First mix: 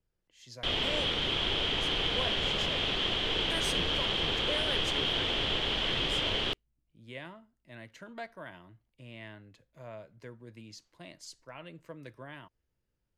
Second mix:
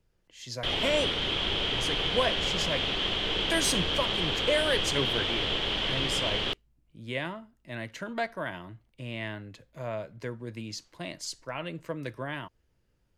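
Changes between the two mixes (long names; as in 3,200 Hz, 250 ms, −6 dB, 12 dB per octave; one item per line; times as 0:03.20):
speech +10.5 dB
reverb: on, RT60 0.90 s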